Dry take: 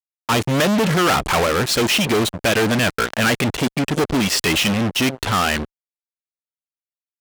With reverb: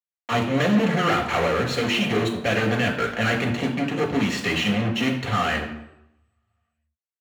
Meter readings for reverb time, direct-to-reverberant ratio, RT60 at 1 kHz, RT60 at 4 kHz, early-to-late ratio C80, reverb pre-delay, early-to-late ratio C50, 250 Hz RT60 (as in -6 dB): 0.85 s, 0.0 dB, 0.85 s, 0.65 s, 10.5 dB, 3 ms, 7.5 dB, 0.75 s